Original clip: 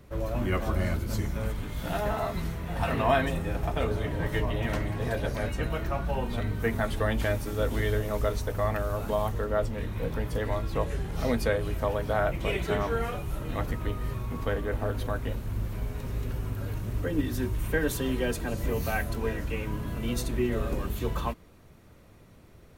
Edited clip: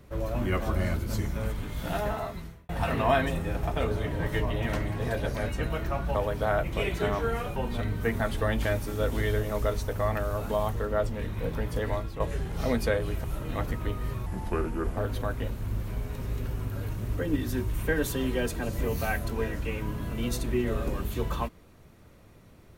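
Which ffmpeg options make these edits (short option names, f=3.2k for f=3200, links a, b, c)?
-filter_complex "[0:a]asplit=8[a][b][c][d][e][f][g][h];[a]atrim=end=2.69,asetpts=PTS-STARTPTS,afade=t=out:st=2:d=0.69[i];[b]atrim=start=2.69:end=6.152,asetpts=PTS-STARTPTS,afade=t=in:d=0.004:c=hsin[j];[c]atrim=start=11.828:end=13.242[k];[d]atrim=start=6.148:end=10.79,asetpts=PTS-STARTPTS,afade=t=out:st=4.372:d=0.27:silence=0.316228[l];[e]atrim=start=10.79:end=11.832,asetpts=PTS-STARTPTS,afade=t=in:d=0.004:c=hsin:silence=0.316228[m];[f]atrim=start=13.238:end=14.264[n];[g]atrim=start=14.26:end=14.82,asetpts=PTS-STARTPTS,asetrate=34839,aresample=44100[o];[h]atrim=start=14.816[p];[i][j]concat=n=2:v=0:a=1[q];[q][k]acrossfade=d=0.004:c1=hsin:c2=hsin[r];[l][m]concat=n=2:v=0:a=1[s];[r][s]acrossfade=d=0.004:c1=hsin:c2=hsin[t];[t][n]acrossfade=d=0.004:c1=hsin:c2=hsin[u];[u][o]acrossfade=d=0.004:c1=hsin:c2=hsin[v];[v][p]acrossfade=d=0.004:c1=hsin:c2=hsin"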